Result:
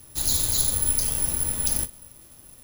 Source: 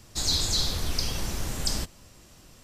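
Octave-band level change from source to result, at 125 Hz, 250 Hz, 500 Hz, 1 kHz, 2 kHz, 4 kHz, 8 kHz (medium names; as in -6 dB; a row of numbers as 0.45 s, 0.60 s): -1.0 dB, -1.5 dB, -1.5 dB, -2.0 dB, -2.0 dB, -4.5 dB, +8.5 dB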